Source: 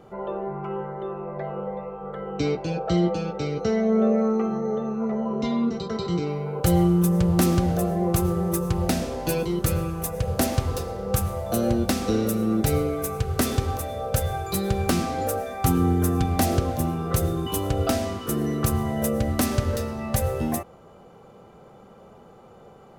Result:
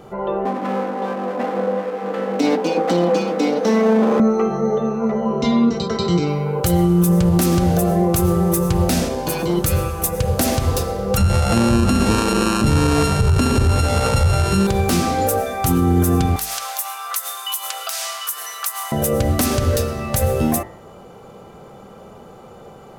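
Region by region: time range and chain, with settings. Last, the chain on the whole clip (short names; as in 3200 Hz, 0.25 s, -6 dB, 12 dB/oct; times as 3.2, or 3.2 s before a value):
0.45–4.2 minimum comb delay 4 ms + Chebyshev high-pass 220 Hz, order 4 + low shelf 360 Hz +11 dB
9.08–9.57 notch comb 660 Hz + core saturation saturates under 690 Hz
11.17–14.67 sample sorter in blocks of 32 samples + LPF 11000 Hz 24 dB/oct + low shelf 480 Hz +11.5 dB
16.36–18.92 inverse Chebyshev high-pass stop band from 250 Hz, stop band 60 dB + tilt +2 dB/oct + compressor 12:1, threshold -30 dBFS
whole clip: high shelf 4800 Hz +4.5 dB; de-hum 54.83 Hz, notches 39; limiter -16.5 dBFS; gain +8.5 dB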